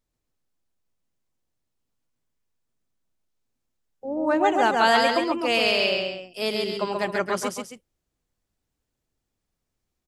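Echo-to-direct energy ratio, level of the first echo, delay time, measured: −2.5 dB, −3.0 dB, 135 ms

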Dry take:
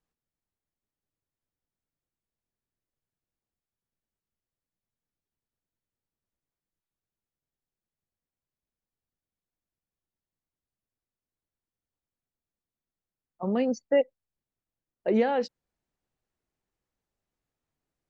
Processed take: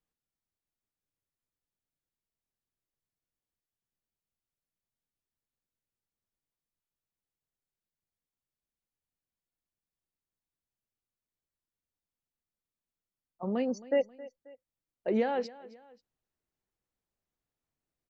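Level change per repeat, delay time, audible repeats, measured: −7.0 dB, 268 ms, 2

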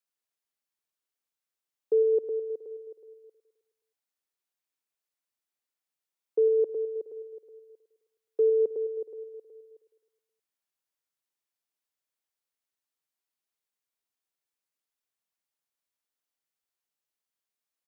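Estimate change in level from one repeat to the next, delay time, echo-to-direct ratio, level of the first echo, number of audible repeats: −4.5 dB, 105 ms, −11.0 dB, −13.0 dB, 5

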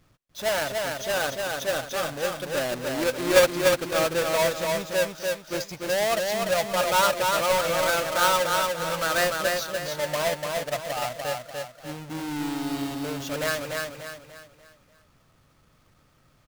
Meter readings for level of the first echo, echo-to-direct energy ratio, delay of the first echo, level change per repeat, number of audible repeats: −3.5 dB, −2.5 dB, 294 ms, −8.0 dB, 4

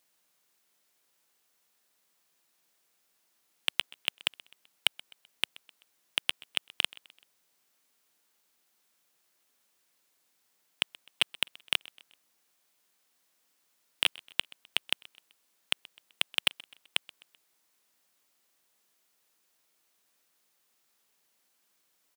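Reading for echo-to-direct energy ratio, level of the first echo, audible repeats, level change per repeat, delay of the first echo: −21.5 dB, −22.5 dB, 2, −6.5 dB, 128 ms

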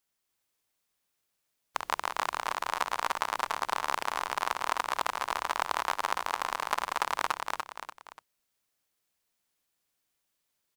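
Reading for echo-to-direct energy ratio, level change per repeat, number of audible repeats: −3.0 dB, −8.0 dB, 3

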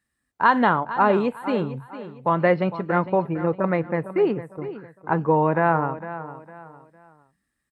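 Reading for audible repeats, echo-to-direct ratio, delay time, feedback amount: 3, −13.0 dB, 456 ms, 33%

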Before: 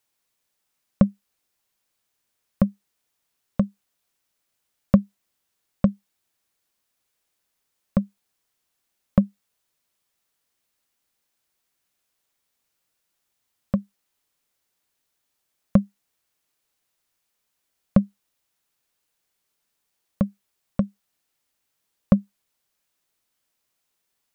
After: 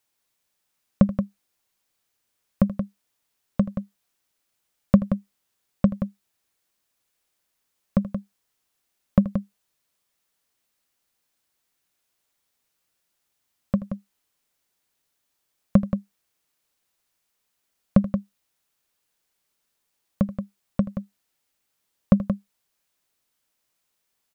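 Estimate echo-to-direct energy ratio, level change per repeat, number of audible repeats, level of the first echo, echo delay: −8.0 dB, repeats not evenly spaced, 2, −16.0 dB, 80 ms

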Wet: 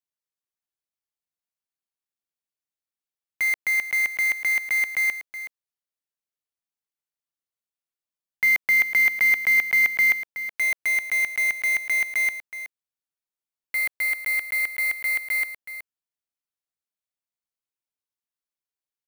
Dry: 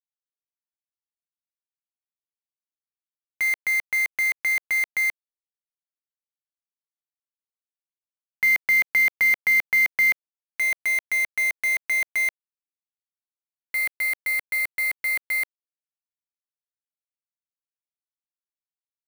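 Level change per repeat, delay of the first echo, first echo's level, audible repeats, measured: repeats not evenly spaced, 372 ms, −12.0 dB, 1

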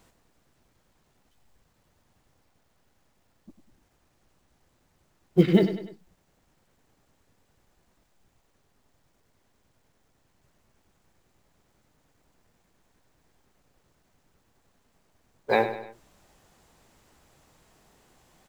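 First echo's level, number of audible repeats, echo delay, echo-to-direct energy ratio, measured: −11.0 dB, 3, 99 ms, −10.0 dB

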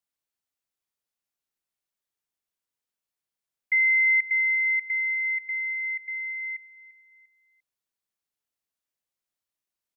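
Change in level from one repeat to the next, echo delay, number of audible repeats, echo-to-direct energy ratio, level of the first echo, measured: −9.0 dB, 346 ms, 3, −16.5 dB, −17.0 dB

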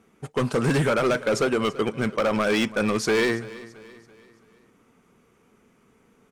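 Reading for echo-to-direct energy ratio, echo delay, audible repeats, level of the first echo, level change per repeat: −17.5 dB, 334 ms, 3, −18.5 dB, −7.0 dB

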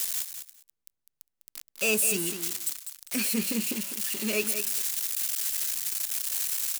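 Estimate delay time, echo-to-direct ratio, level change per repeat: 202 ms, −9.0 dB, −16.5 dB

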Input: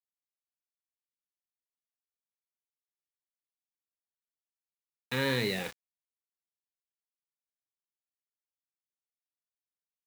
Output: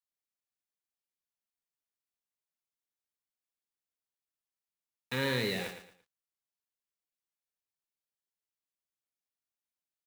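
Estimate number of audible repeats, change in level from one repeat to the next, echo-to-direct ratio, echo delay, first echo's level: 3, −10.5 dB, −9.0 dB, 113 ms, −9.5 dB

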